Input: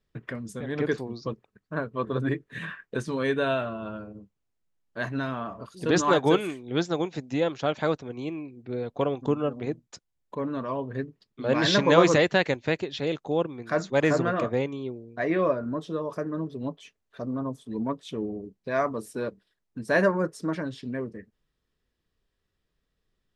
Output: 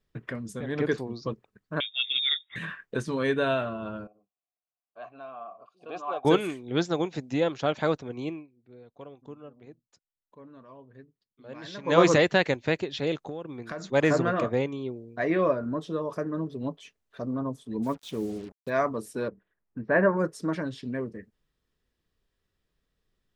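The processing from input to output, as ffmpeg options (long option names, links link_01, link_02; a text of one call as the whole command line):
ffmpeg -i in.wav -filter_complex "[0:a]asettb=1/sr,asplit=3[link_01][link_02][link_03];[link_01]atrim=end=1.804[link_04];[link_02]atrim=start=1.8:end=2.56,asetpts=PTS-STARTPTS,afade=type=in:duration=0.004:curve=qsin,afade=type=out:start_time=0.756:duration=0.004:curve=qsin,lowpass=frequency=3200:width_type=q:width=0.5098,lowpass=frequency=3200:width_type=q:width=0.6013,lowpass=frequency=3200:width_type=q:width=0.9,lowpass=frequency=3200:width_type=q:width=2.563,afreqshift=-3800[link_05];[link_03]atrim=start=2.556[link_06];[link_04][link_05]acrossfade=duration=0.004:curve1=hsin:curve2=qsin[link_07];[link_07][link_06]acrossfade=duration=0.004:curve1=qsin:curve2=hsin,asettb=1/sr,asplit=3[link_08][link_09][link_10];[link_08]atrim=end=4.074[link_11];[link_09]atrim=start=4.07:end=6.25,asetpts=PTS-STARTPTS,afade=type=in:duration=0.004:curve=qsin,afade=type=out:start_time=2.176:duration=0.004:curve=qsin,asplit=3[link_12][link_13][link_14];[link_12]bandpass=frequency=730:width_type=q:width=8,volume=0dB[link_15];[link_13]bandpass=frequency=1090:width_type=q:width=8,volume=-6dB[link_16];[link_14]bandpass=frequency=2440:width_type=q:width=8,volume=-9dB[link_17];[link_15][link_16][link_17]amix=inputs=3:normalize=0[link_18];[link_10]atrim=start=6.246[link_19];[link_11][link_18]acrossfade=duration=0.004:curve1=hsin:curve2=qsin[link_20];[link_20][link_19]acrossfade=duration=0.004:curve1=qsin:curve2=hsin,asettb=1/sr,asplit=3[link_21][link_22][link_23];[link_21]atrim=end=13.274[link_24];[link_22]atrim=start=13.27:end=13.92,asetpts=PTS-STARTPTS,afade=type=in:duration=0.004:curve=qsin,afade=type=out:start_time=0.646:duration=0.004:curve=qsin,acompressor=threshold=-31dB:ratio=16:attack=3.2:release=140:knee=1:detection=peak[link_25];[link_23]atrim=start=13.916[link_26];[link_24][link_25]acrossfade=duration=0.004:curve1=hsin:curve2=qsin[link_27];[link_27][link_26]acrossfade=duration=0.004:curve1=qsin:curve2=hsin,asplit=3[link_28][link_29][link_30];[link_28]afade=type=out:start_time=17.82:duration=0.02[link_31];[link_29]acrusher=bits=7:mix=0:aa=0.5,afade=type=in:start_time=17.82:duration=0.02,afade=type=out:start_time=18.69:duration=0.02[link_32];[link_30]afade=type=in:start_time=18.69:duration=0.02[link_33];[link_31][link_32][link_33]amix=inputs=3:normalize=0,asettb=1/sr,asplit=3[link_34][link_35][link_36];[link_34]atrim=end=19.284[link_37];[link_35]atrim=start=19.28:end=20.17,asetpts=PTS-STARTPTS,afade=type=in:duration=0.004:curve=qsin,afade=type=out:start_time=0.886:duration=0.004:curve=qsin,lowpass=frequency=2100:width=0.5412,lowpass=frequency=2100:width=1.3066[link_38];[link_36]atrim=start=20.166[link_39];[link_37][link_38]acrossfade=duration=0.004:curve1=hsin:curve2=qsin[link_40];[link_40][link_39]acrossfade=duration=0.004:curve1=qsin:curve2=hsin,asplit=3[link_41][link_42][link_43];[link_41]atrim=end=8.47,asetpts=PTS-STARTPTS,afade=type=out:start_time=8.29:duration=0.18:silence=0.11885[link_44];[link_42]atrim=start=8.47:end=11.83,asetpts=PTS-STARTPTS,volume=-18.5dB[link_45];[link_43]atrim=start=11.83,asetpts=PTS-STARTPTS,afade=type=in:duration=0.18:silence=0.11885[link_46];[link_44][link_45][link_46]concat=n=3:v=0:a=1" out.wav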